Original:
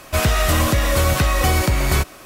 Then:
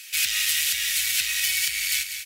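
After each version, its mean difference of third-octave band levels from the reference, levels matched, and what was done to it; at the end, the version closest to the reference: 19.5 dB: saturation -13.5 dBFS, distortion -16 dB; inverse Chebyshev high-pass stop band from 1.1 kHz, stop band 40 dB; feedback delay 195 ms, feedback 38%, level -9 dB; trim +4.5 dB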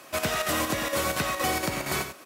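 3.0 dB: high-pass 200 Hz 12 dB/octave; square tremolo 4.3 Hz, depth 60%, duty 80%; delay 92 ms -9 dB; trim -6.5 dB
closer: second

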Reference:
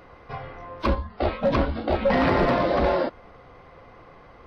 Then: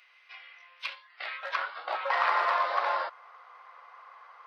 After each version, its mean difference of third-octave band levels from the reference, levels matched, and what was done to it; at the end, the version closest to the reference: 11.5 dB: high-pass sweep 2.5 kHz -> 1.1 kHz, 0.95–1.87 s; high-pass 420 Hz 24 dB/octave; trim -4.5 dB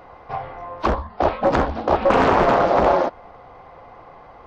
3.0 dB: peaking EQ 800 Hz +11 dB 0.86 oct; loudspeaker Doppler distortion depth 0.83 ms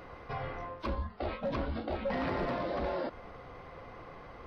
5.0 dB: reverse; compression 4:1, threshold -31 dBFS, peak gain reduction 12 dB; reverse; peak limiter -27 dBFS, peak gain reduction 7.5 dB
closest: second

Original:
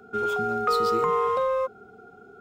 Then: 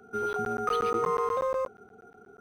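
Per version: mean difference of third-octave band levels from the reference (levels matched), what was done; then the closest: 2.5 dB: crackling interface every 0.12 s, samples 512, zero, from 0.33 s; decimation joined by straight lines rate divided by 6×; trim -3.5 dB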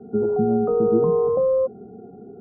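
9.0 dB: Chebyshev low-pass 720 Hz, order 3; peaking EQ 210 Hz +15 dB 2.5 oct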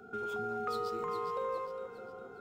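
5.5 dB: compression 2:1, threshold -40 dBFS, peak gain reduction 11 dB; on a send: echo whose repeats swap between lows and highs 204 ms, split 920 Hz, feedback 65%, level -4.5 dB; on the sum: trim -3 dB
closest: first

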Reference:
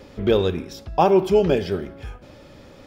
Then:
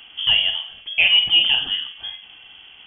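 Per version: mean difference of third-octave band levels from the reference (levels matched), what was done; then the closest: 12.5 dB: on a send: flutter echo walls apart 8.2 m, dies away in 0.29 s; on the sum: frequency inversion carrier 3.3 kHz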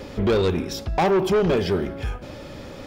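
6.0 dB: in parallel at +0.5 dB: compression, threshold -26 dBFS, peak gain reduction 13.5 dB; on the sum: saturation -17 dBFS, distortion -8 dB; trim +1.5 dB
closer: second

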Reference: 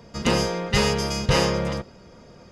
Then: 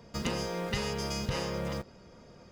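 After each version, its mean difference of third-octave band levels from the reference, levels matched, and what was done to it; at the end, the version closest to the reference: 4.5 dB: in parallel at -7 dB: word length cut 6-bit, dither none; on the sum: compression 6:1, threshold -24 dBFS, peak gain reduction 12 dB; trim -6 dB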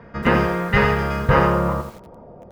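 6.0 dB: low-pass sweep 1.7 kHz -> 720 Hz, 1.07–2.42 s; bit-crushed delay 85 ms, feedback 35%, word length 7-bit, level -8 dB; trim +3 dB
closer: first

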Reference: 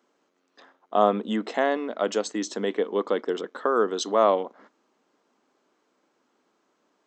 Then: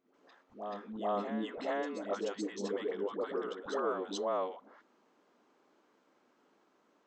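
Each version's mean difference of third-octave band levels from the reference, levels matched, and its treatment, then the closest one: 8.0 dB: treble shelf 5.3 kHz -9.5 dB; compression 2:1, threshold -41 dBFS, peak gain reduction 14.5 dB; phase dispersion highs, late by 141 ms, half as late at 430 Hz; on a send: reverse echo 432 ms -8 dB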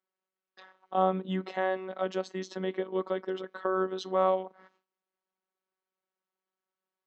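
4.0 dB: distance through air 180 m; robot voice 188 Hz; gate with hold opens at -54 dBFS; tape noise reduction on one side only encoder only; trim -3 dB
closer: second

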